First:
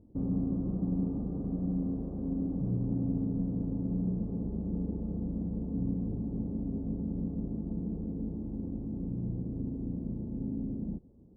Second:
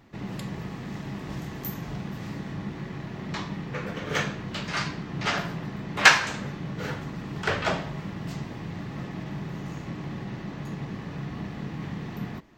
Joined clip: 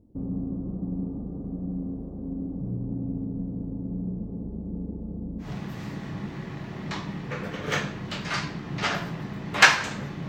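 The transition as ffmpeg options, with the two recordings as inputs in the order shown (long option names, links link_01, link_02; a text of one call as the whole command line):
ffmpeg -i cue0.wav -i cue1.wav -filter_complex "[0:a]apad=whole_dur=10.28,atrim=end=10.28,atrim=end=5.5,asetpts=PTS-STARTPTS[link_01];[1:a]atrim=start=1.81:end=6.71,asetpts=PTS-STARTPTS[link_02];[link_01][link_02]acrossfade=duration=0.12:curve1=tri:curve2=tri" out.wav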